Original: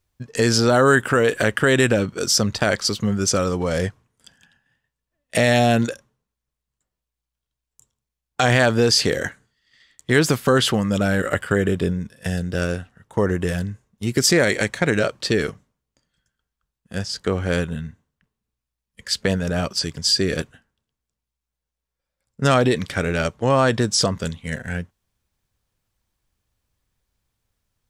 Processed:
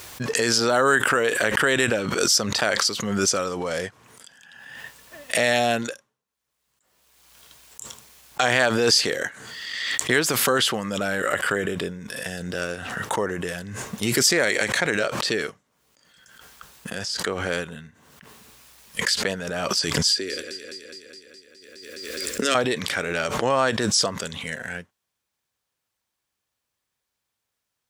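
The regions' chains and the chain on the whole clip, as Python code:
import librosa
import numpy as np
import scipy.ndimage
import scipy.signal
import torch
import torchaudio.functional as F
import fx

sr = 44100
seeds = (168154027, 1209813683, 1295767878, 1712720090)

y = fx.chain(x, sr, fx.fixed_phaser(hz=350.0, stages=4),
    fx.echo_alternate(ms=104, hz=2500.0, feedback_pct=75, wet_db=-11.5),
    fx.band_squash(depth_pct=40), at=(20.09, 22.55))
y = fx.highpass(y, sr, hz=590.0, slope=6)
y = fx.pre_swell(y, sr, db_per_s=32.0)
y = y * librosa.db_to_amplitude(-1.0)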